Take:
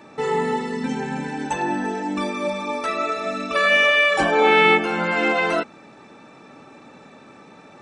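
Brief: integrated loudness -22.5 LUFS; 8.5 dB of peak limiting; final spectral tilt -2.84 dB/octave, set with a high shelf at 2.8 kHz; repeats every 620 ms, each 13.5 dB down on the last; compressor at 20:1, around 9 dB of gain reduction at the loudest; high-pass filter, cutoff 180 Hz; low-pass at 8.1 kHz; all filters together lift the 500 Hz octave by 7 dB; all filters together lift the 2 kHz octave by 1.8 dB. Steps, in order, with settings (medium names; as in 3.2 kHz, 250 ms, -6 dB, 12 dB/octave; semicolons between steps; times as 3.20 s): high-pass 180 Hz; low-pass 8.1 kHz; peaking EQ 500 Hz +8.5 dB; peaking EQ 2 kHz +3.5 dB; treble shelf 2.8 kHz -4.5 dB; compression 20:1, threshold -15 dBFS; peak limiter -16 dBFS; feedback delay 620 ms, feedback 21%, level -13.5 dB; trim +1.5 dB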